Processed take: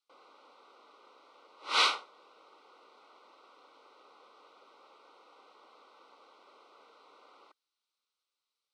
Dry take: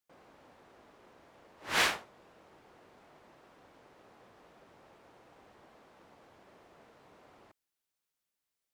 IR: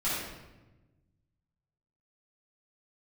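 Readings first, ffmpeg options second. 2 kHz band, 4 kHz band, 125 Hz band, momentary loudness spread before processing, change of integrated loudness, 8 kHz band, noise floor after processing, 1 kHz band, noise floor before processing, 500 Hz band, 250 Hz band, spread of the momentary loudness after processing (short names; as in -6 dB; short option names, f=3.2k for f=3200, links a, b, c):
-1.5 dB, +4.5 dB, under -25 dB, 17 LU, +2.5 dB, -3.0 dB, under -85 dBFS, +3.5 dB, under -85 dBFS, -2.5 dB, -7.5 dB, 10 LU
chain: -af "asuperstop=centerf=1700:order=20:qfactor=4.9,highpass=f=350:w=0.5412,highpass=f=350:w=1.3066,equalizer=f=360:t=q:w=4:g=-5,equalizer=f=670:t=q:w=4:g=-9,equalizer=f=1.2k:t=q:w=4:g=6,equalizer=f=1.9k:t=q:w=4:g=-6,equalizer=f=4k:t=q:w=4:g=7,equalizer=f=7k:t=q:w=4:g=-9,lowpass=f=8k:w=0.5412,lowpass=f=8k:w=1.3066,volume=2dB"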